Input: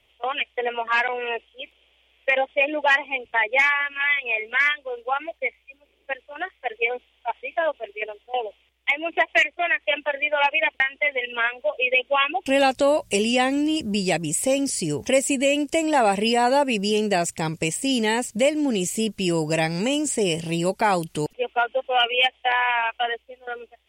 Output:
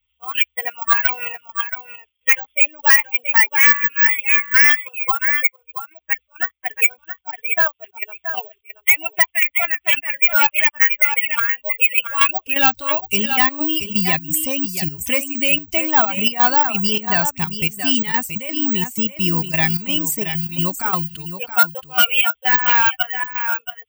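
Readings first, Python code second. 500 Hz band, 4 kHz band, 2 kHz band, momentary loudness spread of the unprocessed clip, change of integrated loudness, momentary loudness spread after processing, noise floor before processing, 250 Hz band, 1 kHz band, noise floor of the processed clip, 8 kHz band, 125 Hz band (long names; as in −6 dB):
−8.5 dB, +3.5 dB, +5.5 dB, 10 LU, +6.5 dB, 11 LU, −64 dBFS, −1.0 dB, +1.5 dB, −70 dBFS, +1.5 dB, +3.5 dB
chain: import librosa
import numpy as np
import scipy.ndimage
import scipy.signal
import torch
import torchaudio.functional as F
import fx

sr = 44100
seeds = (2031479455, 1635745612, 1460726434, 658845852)

p1 = fx.bin_expand(x, sr, power=1.5)
p2 = fx.curve_eq(p1, sr, hz=(170.0, 510.0, 1100.0, 1700.0, 11000.0), db=(0, -15, 8, 9, -10))
p3 = fx.rider(p2, sr, range_db=3, speed_s=0.5)
p4 = p2 + (p3 * librosa.db_to_amplitude(0.5))
p5 = fx.high_shelf(p4, sr, hz=9100.0, db=8.5)
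p6 = fx.step_gate(p5, sr, bpm=129, pattern='xx.xxx.x.xx.', floor_db=-12.0, edge_ms=4.5)
p7 = p6 + fx.echo_single(p6, sr, ms=676, db=-10.5, dry=0)
p8 = (np.kron(scipy.signal.resample_poly(p7, 1, 2), np.eye(2)[0]) * 2)[:len(p7)]
y = 10.0 ** (-4.0 / 20.0) * np.tanh(p8 / 10.0 ** (-4.0 / 20.0))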